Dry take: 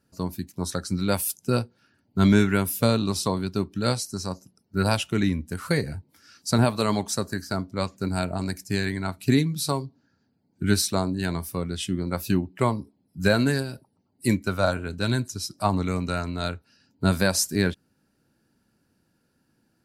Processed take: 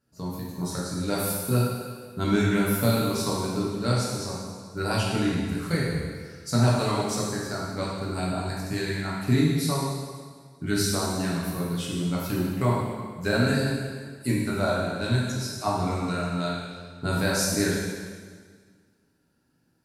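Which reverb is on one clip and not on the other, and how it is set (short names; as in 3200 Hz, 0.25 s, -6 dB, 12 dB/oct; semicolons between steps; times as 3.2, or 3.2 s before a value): plate-style reverb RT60 1.7 s, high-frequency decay 0.95×, DRR -5.5 dB; gain -7.5 dB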